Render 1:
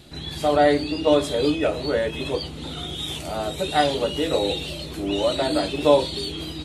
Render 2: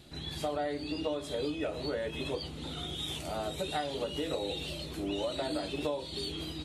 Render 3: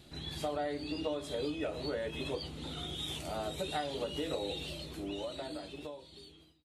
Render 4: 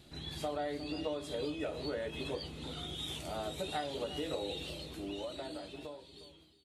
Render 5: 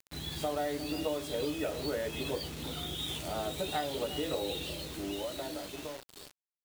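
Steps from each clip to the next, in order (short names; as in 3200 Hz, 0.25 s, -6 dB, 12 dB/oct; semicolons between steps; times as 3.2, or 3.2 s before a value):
compressor 10:1, threshold -23 dBFS, peak gain reduction 13 dB; gain -7 dB
ending faded out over 2.20 s; gain -2 dB
echo 0.357 s -15 dB; gain -1.5 dB
requantised 8-bit, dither none; gain +3.5 dB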